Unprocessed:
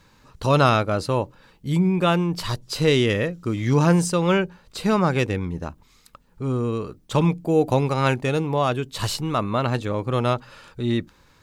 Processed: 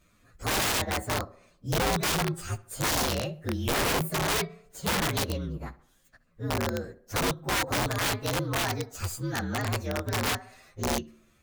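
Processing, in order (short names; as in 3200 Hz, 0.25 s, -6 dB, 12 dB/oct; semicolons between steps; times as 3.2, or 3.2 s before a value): inharmonic rescaling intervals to 120%; tape echo 68 ms, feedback 54%, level -17.5 dB, low-pass 2700 Hz; wrapped overs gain 17 dB; gain -4.5 dB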